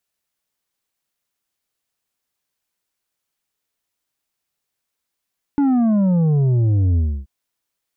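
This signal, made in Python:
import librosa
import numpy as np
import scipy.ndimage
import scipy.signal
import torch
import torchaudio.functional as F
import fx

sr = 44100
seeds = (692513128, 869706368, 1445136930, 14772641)

y = fx.sub_drop(sr, level_db=-14, start_hz=290.0, length_s=1.68, drive_db=6.5, fade_s=0.29, end_hz=65.0)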